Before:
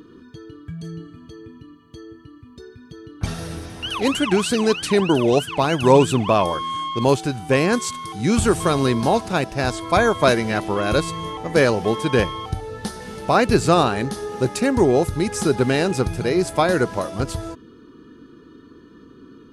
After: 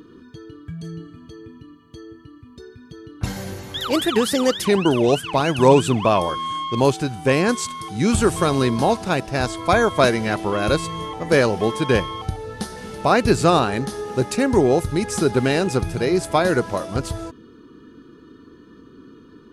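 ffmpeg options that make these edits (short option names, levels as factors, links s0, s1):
-filter_complex "[0:a]asplit=3[s0][s1][s2];[s0]atrim=end=3.244[s3];[s1]atrim=start=3.24:end=4.89,asetpts=PTS-STARTPTS,asetrate=51597,aresample=44100,atrim=end_sample=62192,asetpts=PTS-STARTPTS[s4];[s2]atrim=start=4.886[s5];[s3][s4]acrossfade=d=0.004:c1=hsin:c2=hsin[s6];[s6][s5]acrossfade=d=0.004:c1=hsin:c2=hsin"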